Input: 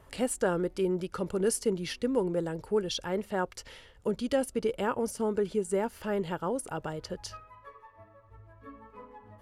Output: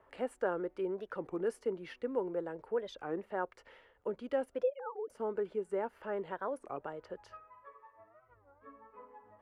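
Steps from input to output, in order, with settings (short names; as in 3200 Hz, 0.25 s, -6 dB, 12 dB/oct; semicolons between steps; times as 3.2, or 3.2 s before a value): 4.64–5.1 sine-wave speech; three-band isolator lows -15 dB, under 310 Hz, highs -22 dB, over 2300 Hz; record warp 33 1/3 rpm, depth 250 cents; gain -4 dB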